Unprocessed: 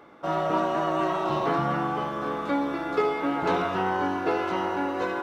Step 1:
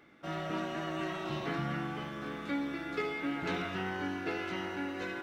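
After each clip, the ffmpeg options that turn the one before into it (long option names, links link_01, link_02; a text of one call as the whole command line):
ffmpeg -i in.wav -af "equalizer=frequency=500:width_type=o:width=1:gain=-7,equalizer=frequency=1000:width_type=o:width=1:gain=-12,equalizer=frequency=2000:width_type=o:width=1:gain=5,volume=-4.5dB" out.wav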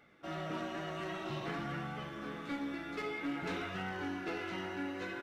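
ffmpeg -i in.wav -af "asoftclip=type=hard:threshold=-30dB,flanger=delay=1.4:depth=9.7:regen=-43:speed=0.52:shape=sinusoidal,aresample=32000,aresample=44100,volume=1dB" out.wav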